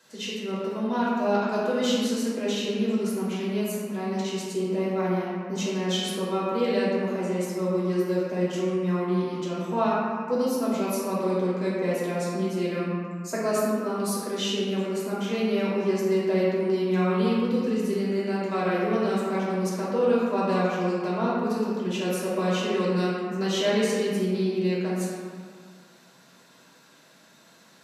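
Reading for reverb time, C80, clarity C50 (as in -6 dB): 1.9 s, -0.5 dB, -2.5 dB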